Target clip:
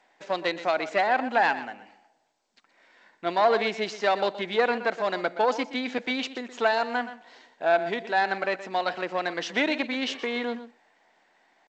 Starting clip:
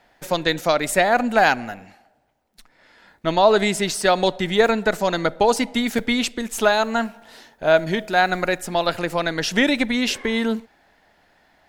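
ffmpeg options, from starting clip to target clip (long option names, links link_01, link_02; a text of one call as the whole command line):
ffmpeg -i in.wav -filter_complex "[0:a]aeval=exprs='(tanh(2.51*val(0)+0.5)-tanh(0.5))/2.51':channel_layout=same,asetrate=46722,aresample=44100,atempo=0.943874,highpass=300,lowpass=3900,asplit=2[link_01][link_02];[link_02]adelay=122.4,volume=-13dB,highshelf=frequency=4000:gain=-2.76[link_03];[link_01][link_03]amix=inputs=2:normalize=0,volume=-3dB" -ar 16000 -c:a g722 out.g722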